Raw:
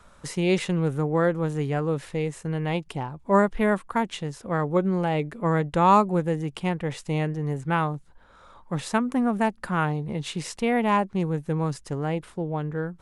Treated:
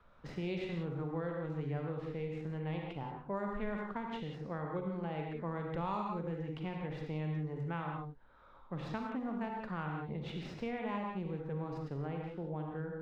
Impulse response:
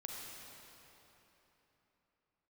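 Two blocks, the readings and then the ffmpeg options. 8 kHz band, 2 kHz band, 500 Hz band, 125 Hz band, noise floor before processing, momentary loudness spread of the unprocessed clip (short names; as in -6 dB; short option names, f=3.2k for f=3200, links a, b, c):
under -25 dB, -15.0 dB, -14.5 dB, -12.0 dB, -54 dBFS, 9 LU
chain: -filter_complex "[1:a]atrim=start_sample=2205,afade=t=out:st=0.24:d=0.01,atrim=end_sample=11025[a];[0:a][a]afir=irnorm=-1:irlink=0,acrossover=split=5000[b][c];[c]acrusher=samples=42:mix=1:aa=0.000001[d];[b][d]amix=inputs=2:normalize=0,acrossover=split=120|3000[e][f][g];[f]acompressor=threshold=-32dB:ratio=3[h];[e][h][g]amix=inputs=3:normalize=0,aemphasis=mode=reproduction:type=50kf,volume=-5.5dB"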